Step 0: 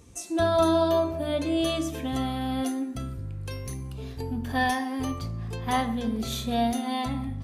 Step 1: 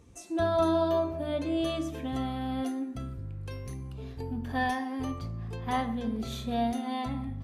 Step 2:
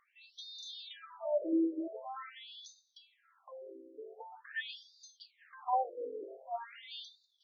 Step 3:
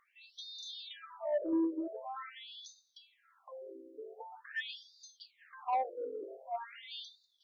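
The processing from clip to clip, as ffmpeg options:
ffmpeg -i in.wav -af "highshelf=frequency=4100:gain=-9,volume=-3.5dB" out.wav
ffmpeg -i in.wav -af "afftfilt=real='re*between(b*sr/1024,390*pow(5100/390,0.5+0.5*sin(2*PI*0.45*pts/sr))/1.41,390*pow(5100/390,0.5+0.5*sin(2*PI*0.45*pts/sr))*1.41)':imag='im*between(b*sr/1024,390*pow(5100/390,0.5+0.5*sin(2*PI*0.45*pts/sr))/1.41,390*pow(5100/390,0.5+0.5*sin(2*PI*0.45*pts/sr))*1.41)':win_size=1024:overlap=0.75,volume=1dB" out.wav
ffmpeg -i in.wav -af "asoftclip=type=tanh:threshold=-25.5dB,volume=1dB" out.wav

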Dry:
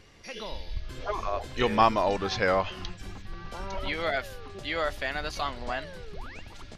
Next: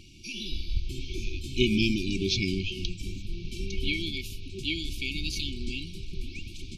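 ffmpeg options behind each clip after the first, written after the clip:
ffmpeg -i in.wav -af "afftfilt=real='re*(1-between(b*sr/4096,390,2200))':imag='im*(1-between(b*sr/4096,390,2200))':win_size=4096:overlap=0.75,volume=5.5dB" out.wav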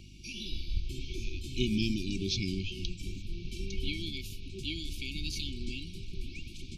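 ffmpeg -i in.wav -filter_complex "[0:a]aeval=exprs='val(0)+0.00447*(sin(2*PI*50*n/s)+sin(2*PI*2*50*n/s)/2+sin(2*PI*3*50*n/s)/3+sin(2*PI*4*50*n/s)/4+sin(2*PI*5*50*n/s)/5)':channel_layout=same,acrossover=split=350|3000[link_01][link_02][link_03];[link_02]acompressor=threshold=-43dB:ratio=6[link_04];[link_01][link_04][link_03]amix=inputs=3:normalize=0,volume=-3.5dB" out.wav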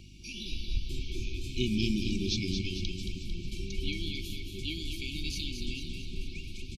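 ffmpeg -i in.wav -af "aecho=1:1:224|448|672|896|1120|1344|1568|1792:0.473|0.274|0.159|0.0923|0.0535|0.0311|0.018|0.0104" out.wav

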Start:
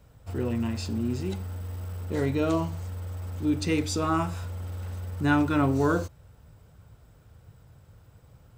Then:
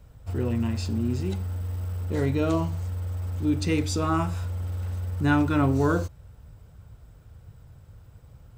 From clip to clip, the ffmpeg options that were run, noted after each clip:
ffmpeg -i in.wav -af "lowshelf=frequency=86:gain=10" out.wav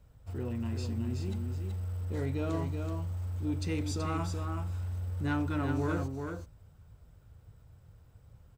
ffmpeg -i in.wav -af "asoftclip=type=tanh:threshold=-15.5dB,aecho=1:1:378:0.531,volume=-8.5dB" out.wav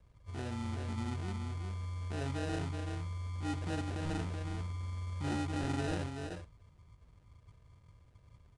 ffmpeg -i in.wav -af "acrusher=samples=40:mix=1:aa=0.000001,volume=-4dB" -ar 22050 -c:a nellymoser out.flv

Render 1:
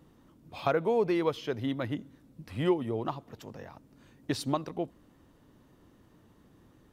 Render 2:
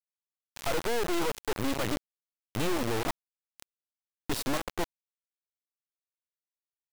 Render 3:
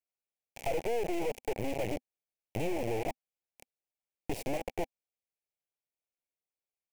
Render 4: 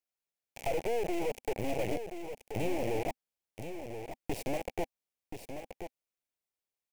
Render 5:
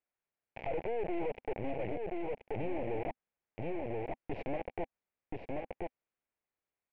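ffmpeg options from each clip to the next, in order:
ffmpeg -i in.wav -af "aeval=exprs='(tanh(56.2*val(0)+0.4)-tanh(0.4))/56.2':channel_layout=same,lowpass=11000,acrusher=bits=5:mix=0:aa=0.000001,volume=7dB" out.wav
ffmpeg -i in.wav -af "equalizer=frequency=250:width=6.9:gain=-7.5,acompressor=threshold=-29dB:ratio=6,firequalizer=gain_entry='entry(300,0);entry(510,5);entry(790,4);entry(1200,-21);entry(2300,3);entry(3700,-12);entry(5900,-6)':delay=0.05:min_phase=1" out.wav
ffmpeg -i in.wav -af "aecho=1:1:1029:0.376" out.wav
ffmpeg -i in.wav -af "lowpass=frequency=2400:width=0.5412,lowpass=frequency=2400:width=1.3066,alimiter=level_in=7dB:limit=-24dB:level=0:latency=1:release=87,volume=-7dB,volume=4dB" out.wav

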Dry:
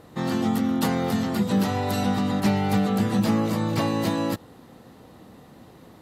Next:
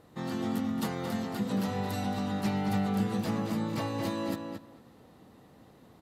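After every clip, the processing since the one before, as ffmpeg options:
ffmpeg -i in.wav -filter_complex "[0:a]asplit=2[link_01][link_02];[link_02]adelay=223,lowpass=frequency=3900:poles=1,volume=-5dB,asplit=2[link_03][link_04];[link_04]adelay=223,lowpass=frequency=3900:poles=1,volume=0.16,asplit=2[link_05][link_06];[link_06]adelay=223,lowpass=frequency=3900:poles=1,volume=0.16[link_07];[link_01][link_03][link_05][link_07]amix=inputs=4:normalize=0,volume=-9dB" out.wav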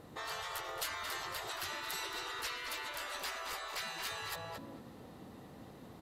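ffmpeg -i in.wav -af "afftfilt=real='re*lt(hypot(re,im),0.0316)':imag='im*lt(hypot(re,im),0.0316)':win_size=1024:overlap=0.75,volume=3.5dB" out.wav

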